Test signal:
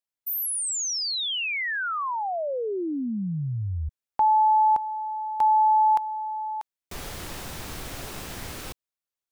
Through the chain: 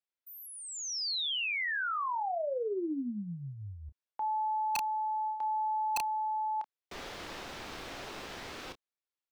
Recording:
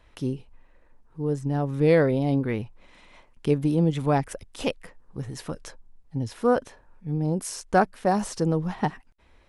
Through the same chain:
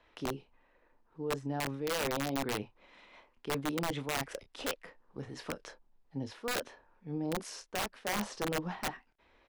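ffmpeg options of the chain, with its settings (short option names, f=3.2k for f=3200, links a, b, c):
-filter_complex "[0:a]acrossover=split=240 5600:gain=0.251 1 0.141[a][b][c];[a][b][c]amix=inputs=3:normalize=0,asplit=2[d][e];[e]adelay=29,volume=-10dB[f];[d][f]amix=inputs=2:normalize=0,areverse,acompressor=threshold=-28dB:ratio=10:attack=37:release=139:knee=1:detection=rms,areverse,aeval=exprs='(mod(14.1*val(0)+1,2)-1)/14.1':c=same,volume=-3.5dB"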